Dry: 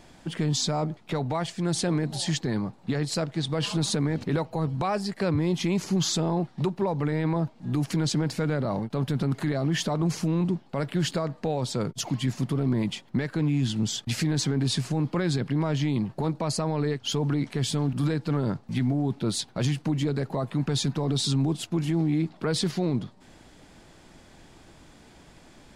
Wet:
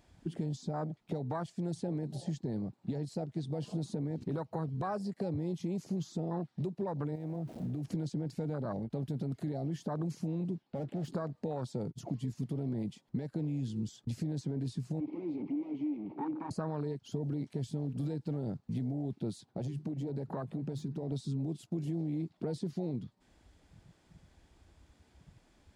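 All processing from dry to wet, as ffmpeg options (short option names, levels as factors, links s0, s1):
-filter_complex "[0:a]asettb=1/sr,asplit=3[s0][s1][s2];[s0]atrim=end=7.154[s3];[s1]atrim=start=7.15:end=7.85,asetpts=PTS-STARTPTS,afade=t=in:d=0.004:c=qsin,afade=t=out:st=0.696:d=0.004:c=qsin,aeval=exprs='val(0)+0.5*0.0158*sgn(val(0))':c=same,acompressor=threshold=0.0282:ratio=5:attack=3.2:release=140:knee=1:detection=peak[s4];[s2]atrim=start=7.846[s5];[s3][s4]acrossfade=d=0.004:c1=hsin:c2=qsin[s6];[s6][s5]acrossfade=d=0.004:c1=qsin:c2=hsin,asettb=1/sr,asplit=3[s7][s8][s9];[s7]atrim=end=10.634[s10];[s8]atrim=start=10.63:end=11.08,asetpts=PTS-STARTPTS,afade=t=in:d=0.004:c=qsin,afade=t=out:st=0.446:d=0.004:c=qsin,highpass=150,lowpass=5400,asoftclip=type=hard:threshold=0.0316[s11];[s9]atrim=start=11.076[s12];[s10][s11]acrossfade=d=0.004:c1=hsin:c2=qsin[s13];[s13][s12]acrossfade=d=0.004:c1=qsin:c2=hsin,asettb=1/sr,asplit=3[s14][s15][s16];[s14]atrim=end=15.004[s17];[s15]atrim=start=15:end=16.51,asetpts=PTS-STARTPTS,afade=t=in:d=0.004:c=qsin,afade=t=out:st=1.506:d=0.004:c=qsin,asplit=2[s18][s19];[s19]highpass=f=720:p=1,volume=70.8,asoftclip=type=tanh:threshold=0.141[s20];[s18][s20]amix=inputs=2:normalize=0,lowpass=f=2200:p=1,volume=0.501,asplit=3[s21][s22][s23];[s21]bandpass=f=300:t=q:w=8,volume=1[s24];[s22]bandpass=f=870:t=q:w=8,volume=0.501[s25];[s23]bandpass=f=2240:t=q:w=8,volume=0.355[s26];[s24][s25][s26]amix=inputs=3:normalize=0[s27];[s16]atrim=start=16.506[s28];[s17][s27]acrossfade=d=0.004:c1=hsin:c2=qsin[s29];[s29][s28]acrossfade=d=0.004:c1=qsin:c2=hsin,asettb=1/sr,asplit=3[s30][s31][s32];[s30]atrim=end=19.514[s33];[s31]atrim=start=19.51:end=21.12,asetpts=PTS-STARTPTS,afade=t=in:d=0.004:c=qsin,afade=t=out:st=1.606:d=0.004:c=qsin,acompressor=threshold=0.0126:ratio=1.5:attack=3.2:release=140:knee=1:detection=peak,bandreject=f=50:t=h:w=6,bandreject=f=100:t=h:w=6,bandreject=f=150:t=h:w=6,aeval=exprs='clip(val(0),-1,0.0299)':c=same[s34];[s32]atrim=start=21.116[s35];[s33][s34]acrossfade=d=0.004:c1=hsin:c2=qsin[s36];[s36][s35]acrossfade=d=0.004:c1=qsin:c2=hsin,acrossover=split=1500|3900[s37][s38][s39];[s37]acompressor=threshold=0.0158:ratio=4[s40];[s38]acompressor=threshold=0.00251:ratio=4[s41];[s39]acompressor=threshold=0.01:ratio=4[s42];[s40][s41][s42]amix=inputs=3:normalize=0,afwtdn=0.0126,highpass=53,volume=1.19"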